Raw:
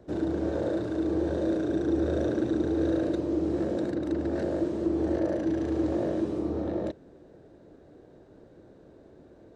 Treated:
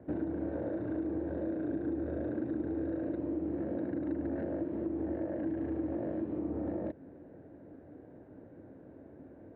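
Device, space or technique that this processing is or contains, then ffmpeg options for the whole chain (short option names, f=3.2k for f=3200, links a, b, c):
bass amplifier: -af "acompressor=threshold=-33dB:ratio=6,highpass=66,equalizer=f=95:t=q:w=4:g=4,equalizer=f=270:t=q:w=4:g=6,equalizer=f=400:t=q:w=4:g=-4,equalizer=f=1.2k:t=q:w=4:g=-5,lowpass=f=2.2k:w=0.5412,lowpass=f=2.2k:w=1.3066"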